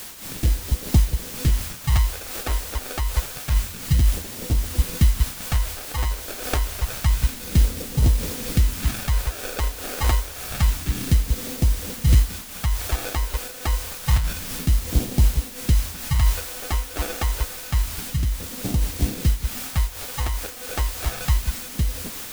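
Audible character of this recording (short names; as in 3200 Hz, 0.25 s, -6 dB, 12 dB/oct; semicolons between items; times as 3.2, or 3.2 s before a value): aliases and images of a low sample rate 1000 Hz, jitter 0%; phasing stages 2, 0.28 Hz, lowest notch 140–1400 Hz; a quantiser's noise floor 6-bit, dither triangular; noise-modulated level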